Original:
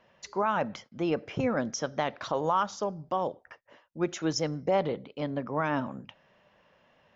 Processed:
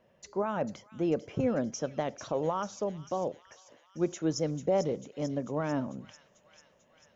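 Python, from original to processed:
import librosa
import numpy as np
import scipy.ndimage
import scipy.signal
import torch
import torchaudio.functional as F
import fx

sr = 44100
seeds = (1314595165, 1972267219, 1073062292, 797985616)

p1 = fx.band_shelf(x, sr, hz=2100.0, db=-8.5, octaves=3.0)
y = p1 + fx.echo_wet_highpass(p1, sr, ms=444, feedback_pct=66, hz=2800.0, wet_db=-8, dry=0)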